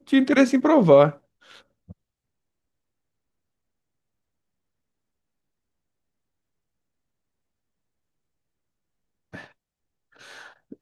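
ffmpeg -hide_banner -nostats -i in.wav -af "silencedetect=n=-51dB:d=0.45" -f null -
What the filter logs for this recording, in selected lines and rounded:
silence_start: 1.92
silence_end: 9.33 | silence_duration: 7.40
silence_start: 9.52
silence_end: 10.13 | silence_duration: 0.61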